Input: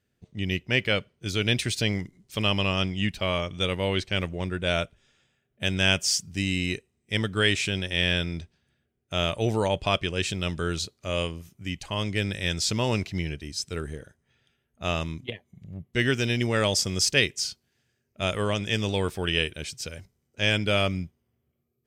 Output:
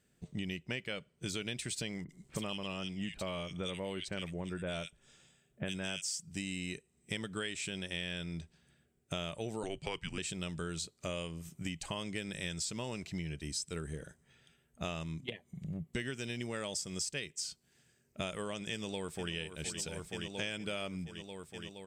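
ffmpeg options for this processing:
-filter_complex "[0:a]asettb=1/sr,asplit=3[a][b][c];[a]atrim=end=2.044[d];[b]atrim=start=2.04:end=6.02,asetpts=PTS-STARTPTS,afade=t=in:d=0.004:c=qsin,afade=t=out:st=3.976:d=0.004:c=qsin,acrossover=split=2100[e][f];[f]adelay=50[g];[e][g]amix=inputs=2:normalize=0,atrim=end_sample=175518[h];[c]atrim=start=6.016[i];[d][h]acrossfade=d=0.004:c1=hsin:c2=qsin[j];[j][i]acrossfade=d=0.004:c1=qsin:c2=hsin,asettb=1/sr,asplit=3[k][l][m];[k]atrim=end=9.634[n];[l]atrim=start=9.63:end=10.18,asetpts=PTS-STARTPTS,afade=t=in:d=0.004:c=qsin,afade=t=out:st=0.546:d=0.004:c=qsin,afreqshift=-200[o];[m]atrim=start=10.176[p];[n][o]acrossfade=d=0.004:c1=hsin:c2=qsin[q];[q][p]acrossfade=d=0.004:c1=qsin:c2=hsin,asplit=2[r][s];[s]afade=t=in:st=18.71:d=0.01,afade=t=out:st=19.33:d=0.01,aecho=0:1:470|940|1410|1880|2350|2820|3290|3760|4230|4700|5170|5640:0.237137|0.177853|0.13339|0.100042|0.0750317|0.0562738|0.0422054|0.031654|0.0237405|0.0178054|0.013354|0.0100155[t];[r][t]amix=inputs=2:normalize=0,equalizer=f=100:t=o:w=0.33:g=-11,equalizer=f=160:t=o:w=0.33:g=6,equalizer=f=8k:t=o:w=0.33:g=11,acompressor=threshold=-38dB:ratio=10,volume=2.5dB"

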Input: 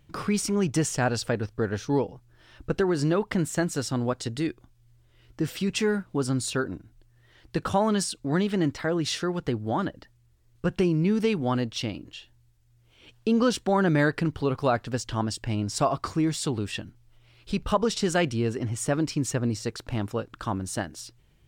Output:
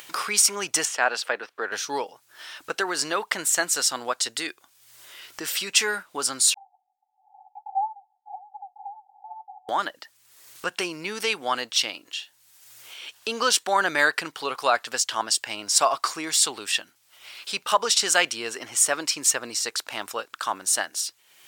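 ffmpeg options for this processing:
-filter_complex "[0:a]asettb=1/sr,asplit=3[a][b][c];[a]atrim=end=0.854[d];[b]atrim=start=0.85:end=1.72,asetpts=PTS-STARTPTS,afade=t=in:d=0.004:c=qsin,afade=t=out:st=0.866:d=0.004:c=qsin,acrossover=split=210 3500:gain=0.141 1 0.178[e][f][g];[e][f][g]amix=inputs=3:normalize=0[h];[c]atrim=start=1.716[i];[d][h]acrossfade=d=0.004:c1=hsin:c2=qsin[j];[j][i]acrossfade=d=0.004:c1=qsin:c2=hsin,asettb=1/sr,asplit=3[k][l][m];[k]atrim=end=6.544[n];[l]atrim=start=6.54:end=9.69,asetpts=PTS-STARTPTS,afade=t=in:d=0.004:c=qsin,afade=t=out:st=3.146:d=0.004:c=qsin,asuperpass=centerf=800:order=20:qfactor=5.3[o];[m]atrim=start=9.686[p];[n][o]acrossfade=d=0.004:c1=hsin:c2=qsin[q];[q][p]acrossfade=d=0.004:c1=qsin:c2=hsin,highpass=890,highshelf=f=5.1k:g=9,acompressor=mode=upward:threshold=-40dB:ratio=2.5,volume=7.5dB"

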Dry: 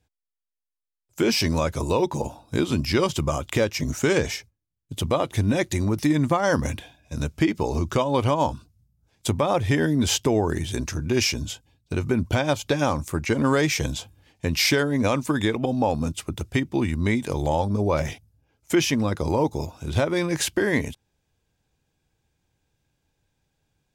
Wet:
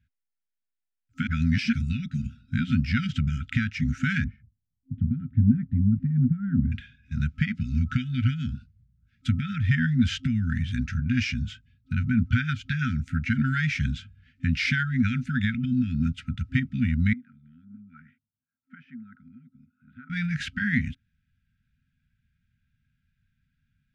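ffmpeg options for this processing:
-filter_complex "[0:a]asettb=1/sr,asplit=3[a][b][c];[a]atrim=end=4.244[d];[b]atrim=start=4.24:end=6.72,asetpts=PTS-STARTPTS,afade=t=in:d=0.004:c=qsin,afade=t=out:st=2.476:d=0.004:c=qsin,lowpass=f=430:t=q:w=4.9[e];[c]atrim=start=6.716[f];[d][e]acrossfade=d=0.004:c1=hsin:c2=qsin[g];[g][f]acrossfade=d=0.004:c1=qsin:c2=hsin,asettb=1/sr,asplit=3[h][i][j];[h]atrim=end=17.134[k];[i]atrim=start=17.13:end=20.1,asetpts=PTS-STARTPTS,afade=t=in:d=0.004:c=qsin,afade=t=out:st=2.966:d=0.004:c=qsin,asuperpass=centerf=590:order=4:qfactor=1.3[l];[j]atrim=start=20.096[m];[k][l]acrossfade=d=0.004:c1=hsin:c2=qsin[n];[n][m]acrossfade=d=0.004:c1=qsin:c2=hsin,asplit=3[o][p][q];[o]atrim=end=1.272[r];[p]atrim=start=1.268:end=1.732,asetpts=PTS-STARTPTS,areverse[s];[q]atrim=start=1.728[t];[r][s]acrossfade=d=0.004:c1=hsin:c2=hsin[u];[u][t]acrossfade=d=0.004:c1=hsin:c2=hsin,lowpass=2.1k,afftfilt=real='re*(1-between(b*sr/4096,260,1300))':imag='im*(1-between(b*sr/4096,260,1300))':win_size=4096:overlap=0.75,volume=2dB"

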